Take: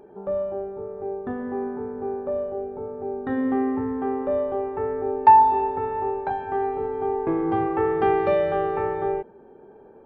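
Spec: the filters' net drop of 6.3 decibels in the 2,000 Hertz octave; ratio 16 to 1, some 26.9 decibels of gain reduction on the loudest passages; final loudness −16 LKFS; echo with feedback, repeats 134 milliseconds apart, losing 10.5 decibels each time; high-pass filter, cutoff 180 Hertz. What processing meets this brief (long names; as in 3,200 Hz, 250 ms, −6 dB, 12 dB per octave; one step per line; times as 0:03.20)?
high-pass filter 180 Hz
parametric band 2,000 Hz −8 dB
downward compressor 16 to 1, threshold −37 dBFS
repeating echo 134 ms, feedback 30%, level −10.5 dB
level +24.5 dB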